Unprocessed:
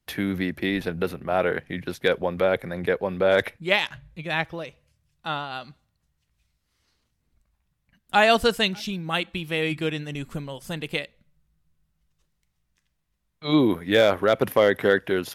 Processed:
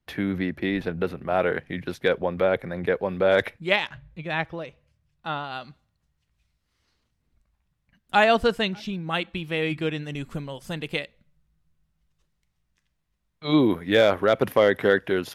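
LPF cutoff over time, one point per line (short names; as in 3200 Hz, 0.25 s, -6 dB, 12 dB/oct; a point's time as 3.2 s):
LPF 6 dB/oct
2600 Hz
from 1.17 s 5700 Hz
from 2.04 s 3200 Hz
from 2.96 s 6000 Hz
from 3.76 s 2600 Hz
from 5.44 s 5500 Hz
from 8.24 s 2200 Hz
from 9.07 s 3600 Hz
from 10.03 s 6400 Hz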